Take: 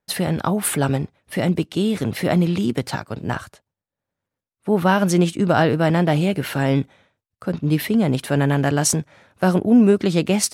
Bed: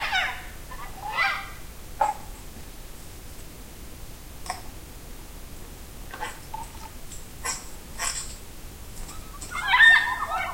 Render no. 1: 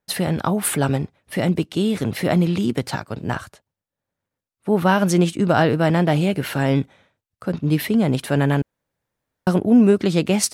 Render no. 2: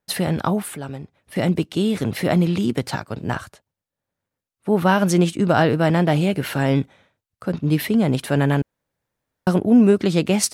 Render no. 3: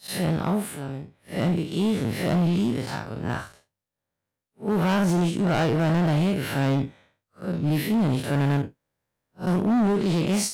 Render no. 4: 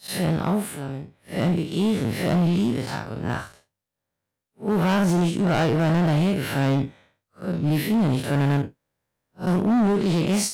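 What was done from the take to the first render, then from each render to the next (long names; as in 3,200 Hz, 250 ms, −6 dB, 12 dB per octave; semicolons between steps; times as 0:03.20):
0:08.62–0:09.47: fill with room tone
0:00.62–0:01.36: downward compressor 1.5 to 1, threshold −49 dBFS
spectrum smeared in time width 104 ms; gain into a clipping stage and back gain 18.5 dB
level +1.5 dB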